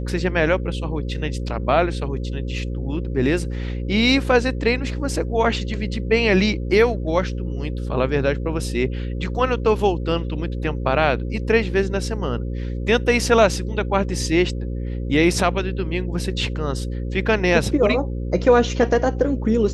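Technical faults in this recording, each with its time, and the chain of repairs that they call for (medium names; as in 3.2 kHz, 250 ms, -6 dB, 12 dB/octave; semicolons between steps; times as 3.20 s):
buzz 60 Hz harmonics 9 -26 dBFS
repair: de-hum 60 Hz, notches 9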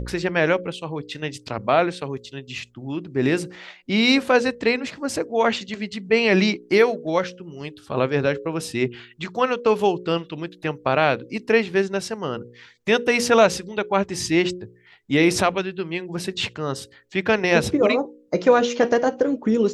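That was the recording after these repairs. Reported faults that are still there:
nothing left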